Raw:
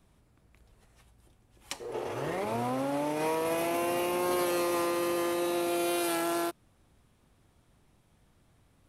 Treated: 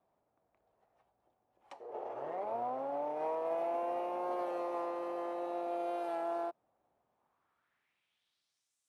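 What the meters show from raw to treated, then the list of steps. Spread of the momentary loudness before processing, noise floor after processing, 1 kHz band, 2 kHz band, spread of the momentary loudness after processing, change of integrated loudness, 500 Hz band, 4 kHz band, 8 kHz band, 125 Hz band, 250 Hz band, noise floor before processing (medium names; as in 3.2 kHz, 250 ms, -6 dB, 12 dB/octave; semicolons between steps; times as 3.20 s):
8 LU, -84 dBFS, -4.0 dB, -16.0 dB, 8 LU, -7.0 dB, -5.5 dB, under -20 dB, under -30 dB, under -20 dB, -13.5 dB, -66 dBFS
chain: band-pass sweep 710 Hz -> 7.1 kHz, 7.09–8.76 s; trim -1 dB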